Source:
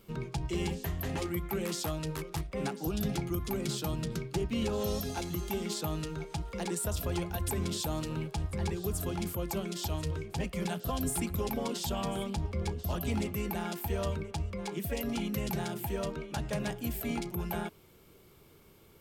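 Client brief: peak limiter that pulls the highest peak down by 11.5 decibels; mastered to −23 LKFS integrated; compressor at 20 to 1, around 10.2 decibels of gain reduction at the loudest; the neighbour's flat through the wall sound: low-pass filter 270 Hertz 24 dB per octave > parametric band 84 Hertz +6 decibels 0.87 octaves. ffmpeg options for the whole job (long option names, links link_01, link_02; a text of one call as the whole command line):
ffmpeg -i in.wav -af "acompressor=threshold=-38dB:ratio=20,alimiter=level_in=14.5dB:limit=-24dB:level=0:latency=1,volume=-14.5dB,lowpass=frequency=270:width=0.5412,lowpass=frequency=270:width=1.3066,equalizer=frequency=84:width_type=o:width=0.87:gain=6,volume=24.5dB" out.wav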